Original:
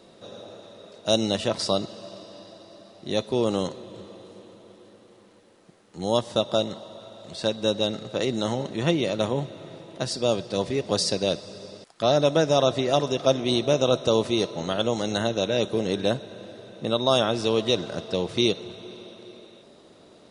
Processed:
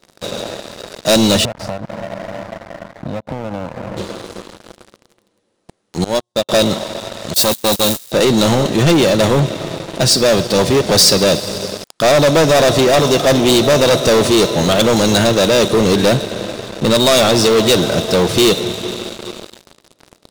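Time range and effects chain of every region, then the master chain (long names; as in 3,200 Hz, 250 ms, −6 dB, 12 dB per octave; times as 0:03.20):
0:01.45–0:03.97: Savitzky-Golay smoothing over 65 samples + comb filter 1.3 ms, depth 97% + downward compressor 10 to 1, threshold −38 dBFS
0:06.04–0:06.49: mains-hum notches 60/120/180 Hz + tuned comb filter 180 Hz, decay 1.1 s + expander for the loud parts 2.5 to 1, over −43 dBFS
0:07.34–0:08.12: spike at every zero crossing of −21 dBFS + noise gate −28 dBFS, range −21 dB + saturating transformer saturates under 1,800 Hz
whole clip: leveller curve on the samples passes 5; bass and treble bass +1 dB, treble +4 dB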